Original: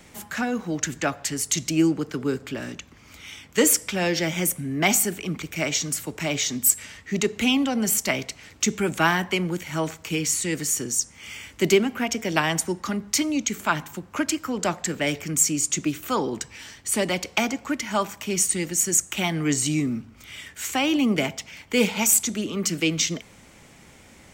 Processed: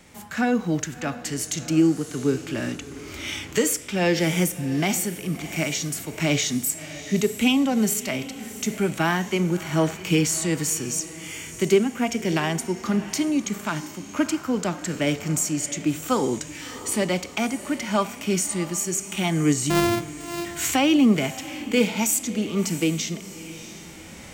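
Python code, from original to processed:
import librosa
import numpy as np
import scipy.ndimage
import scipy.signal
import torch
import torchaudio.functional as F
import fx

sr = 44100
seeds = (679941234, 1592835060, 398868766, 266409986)

y = fx.sample_sort(x, sr, block=128, at=(19.7, 20.45))
y = fx.recorder_agc(y, sr, target_db=-9.5, rise_db_per_s=7.8, max_gain_db=30)
y = fx.echo_diffused(y, sr, ms=676, feedback_pct=42, wet_db=-16)
y = fx.hpss(y, sr, part='harmonic', gain_db=9)
y = y * librosa.db_to_amplitude(-8.0)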